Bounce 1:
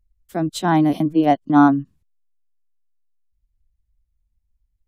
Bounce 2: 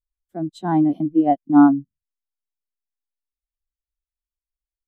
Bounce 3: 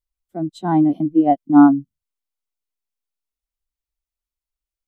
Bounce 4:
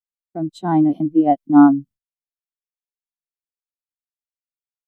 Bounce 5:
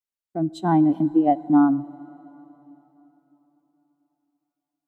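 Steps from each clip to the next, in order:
spectral expander 1.5:1
notch 1700 Hz, Q 9.1; gain +2 dB
expander -36 dBFS
compressor, threshold -13 dBFS, peak gain reduction 8 dB; plate-style reverb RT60 3.8 s, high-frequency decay 0.95×, DRR 18.5 dB

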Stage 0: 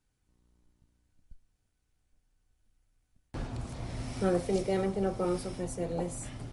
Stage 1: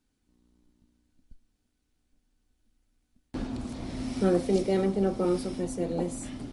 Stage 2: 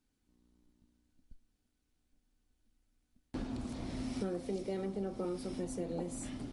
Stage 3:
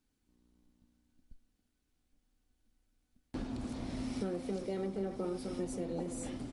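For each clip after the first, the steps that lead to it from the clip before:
graphic EQ 125/250/4000 Hz -6/+12/+4 dB
compressor 6:1, threshold -30 dBFS, peak gain reduction 11 dB; gain -4 dB
speakerphone echo 0.28 s, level -7 dB

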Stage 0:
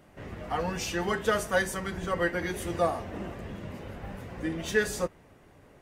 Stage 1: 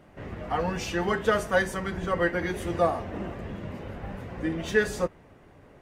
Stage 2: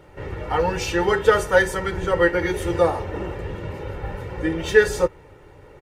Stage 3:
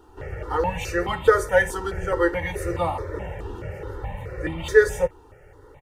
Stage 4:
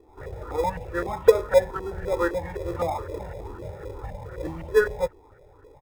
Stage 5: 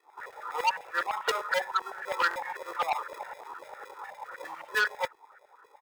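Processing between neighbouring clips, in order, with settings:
high shelf 4700 Hz -9.5 dB; gain +3 dB
comb 2.2 ms, depth 68%; gain +5 dB
step phaser 4.7 Hz 570–1600 Hz
LFO low-pass saw up 3.9 Hz 490–1700 Hz; in parallel at -12 dB: sample-and-hold 30×; on the sum: gain -6.5 dB
LFO high-pass saw down 9.9 Hz 820–1700 Hz; stuck buffer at 2.29, samples 1024, times 2; core saturation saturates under 4000 Hz

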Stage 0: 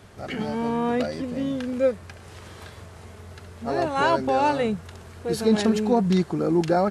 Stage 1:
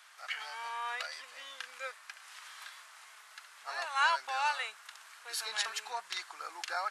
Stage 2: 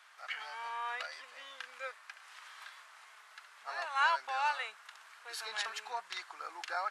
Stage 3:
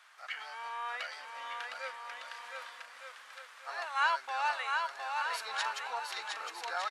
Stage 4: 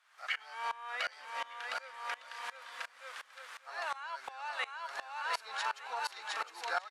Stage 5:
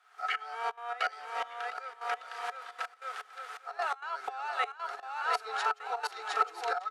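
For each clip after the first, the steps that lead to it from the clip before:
HPF 1100 Hz 24 dB/oct; gain -1.5 dB
high shelf 4200 Hz -9.5 dB
bouncing-ball echo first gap 0.71 s, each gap 0.7×, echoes 5
compressor 6:1, threshold -36 dBFS, peak gain reduction 11.5 dB; dB-ramp tremolo swelling 2.8 Hz, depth 22 dB; gain +9 dB
step gate "xxxxxxxxx.xx." 194 bpm -12 dB; small resonant body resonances 430/730/1300 Hz, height 17 dB, ringing for 55 ms

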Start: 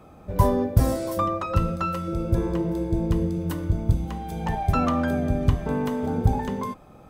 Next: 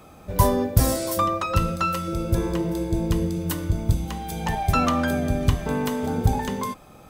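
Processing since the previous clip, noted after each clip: high shelf 2100 Hz +11.5 dB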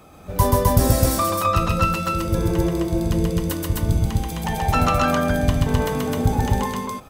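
loudspeakers at several distances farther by 45 m -2 dB, 89 m -1 dB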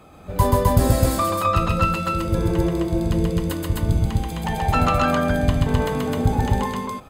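high shelf 9000 Hz -8 dB; notch 5700 Hz, Q 5.5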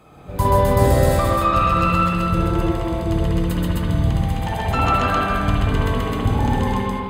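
spring tank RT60 1.9 s, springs 51/58 ms, chirp 25 ms, DRR -4.5 dB; gain -2.5 dB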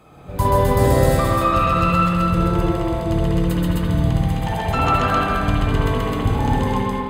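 echo with dull and thin repeats by turns 0.108 s, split 1000 Hz, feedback 55%, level -8 dB

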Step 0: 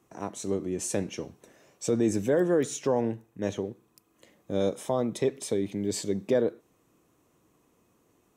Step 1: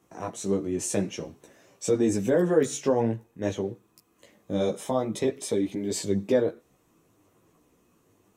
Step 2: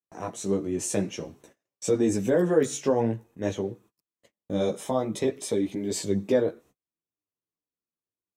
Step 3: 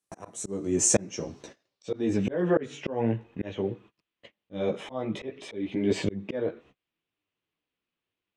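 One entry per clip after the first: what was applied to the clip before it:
chorus voices 4, 0.5 Hz, delay 15 ms, depth 4.8 ms; gain +5 dB
gate -52 dBFS, range -37 dB
low-pass sweep 9900 Hz -> 2900 Hz, 0.21–2.41; auto swell 0.536 s; dynamic EQ 3900 Hz, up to -8 dB, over -57 dBFS, Q 1.2; gain +8.5 dB

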